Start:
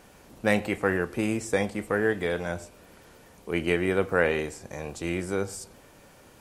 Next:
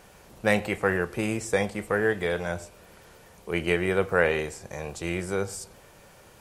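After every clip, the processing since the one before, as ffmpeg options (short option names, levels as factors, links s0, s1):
-af "equalizer=f=270:t=o:w=0.44:g=-9,volume=1.19"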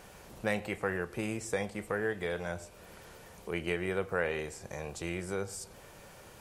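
-af "acompressor=threshold=0.00631:ratio=1.5"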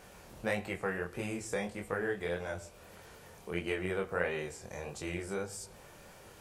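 -af "flanger=delay=20:depth=5.6:speed=1.6,volume=1.19"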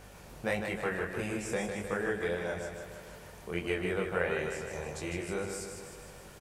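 -af "aeval=exprs='val(0)+0.00178*(sin(2*PI*50*n/s)+sin(2*PI*2*50*n/s)/2+sin(2*PI*3*50*n/s)/3+sin(2*PI*4*50*n/s)/4+sin(2*PI*5*50*n/s)/5)':c=same,aecho=1:1:154|308|462|616|770|924|1078|1232:0.501|0.301|0.18|0.108|0.065|0.039|0.0234|0.014,volume=1.12"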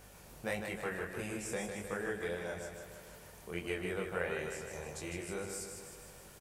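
-af "crystalizer=i=1:c=0,volume=0.531"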